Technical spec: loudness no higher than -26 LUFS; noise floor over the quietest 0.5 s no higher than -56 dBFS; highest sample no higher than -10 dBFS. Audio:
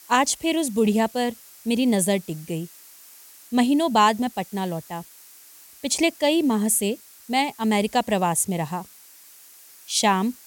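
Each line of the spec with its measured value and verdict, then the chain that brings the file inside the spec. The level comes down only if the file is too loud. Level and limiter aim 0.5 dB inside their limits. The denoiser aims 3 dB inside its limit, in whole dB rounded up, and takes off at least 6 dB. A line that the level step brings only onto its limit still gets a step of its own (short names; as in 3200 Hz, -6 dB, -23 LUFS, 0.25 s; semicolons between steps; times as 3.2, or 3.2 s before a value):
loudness -22.5 LUFS: fail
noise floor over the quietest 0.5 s -49 dBFS: fail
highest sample -6.5 dBFS: fail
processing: denoiser 6 dB, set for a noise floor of -49 dBFS; gain -4 dB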